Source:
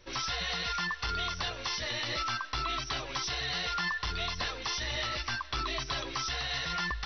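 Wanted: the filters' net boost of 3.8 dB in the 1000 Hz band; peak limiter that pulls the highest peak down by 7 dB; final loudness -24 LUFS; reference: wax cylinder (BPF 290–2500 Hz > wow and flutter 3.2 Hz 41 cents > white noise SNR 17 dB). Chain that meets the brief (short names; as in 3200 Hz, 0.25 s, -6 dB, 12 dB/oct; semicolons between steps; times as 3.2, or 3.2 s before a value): bell 1000 Hz +5.5 dB; limiter -25.5 dBFS; BPF 290–2500 Hz; wow and flutter 3.2 Hz 41 cents; white noise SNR 17 dB; gain +12 dB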